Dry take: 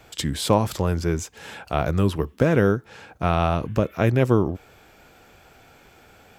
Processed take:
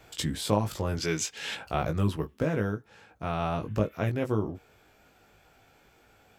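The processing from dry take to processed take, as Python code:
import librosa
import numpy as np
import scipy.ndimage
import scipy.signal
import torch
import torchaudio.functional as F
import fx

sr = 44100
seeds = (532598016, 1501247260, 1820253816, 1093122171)

y = fx.weighting(x, sr, curve='D', at=(0.97, 1.55))
y = fx.rider(y, sr, range_db=4, speed_s=0.5)
y = fx.doubler(y, sr, ms=19.0, db=-5.0)
y = y * librosa.db_to_amplitude(-8.0)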